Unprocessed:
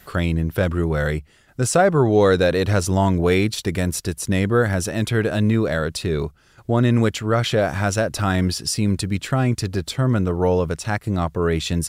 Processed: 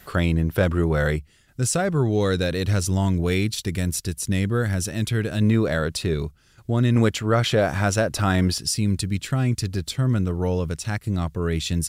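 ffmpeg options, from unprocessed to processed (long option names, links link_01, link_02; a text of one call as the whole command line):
ffmpeg -i in.wav -af "asetnsamples=nb_out_samples=441:pad=0,asendcmd='1.16 equalizer g -10;5.41 equalizer g -2;6.14 equalizer g -8.5;6.96 equalizer g -1;8.58 equalizer g -9',equalizer=frequency=760:width_type=o:width=2.7:gain=0" out.wav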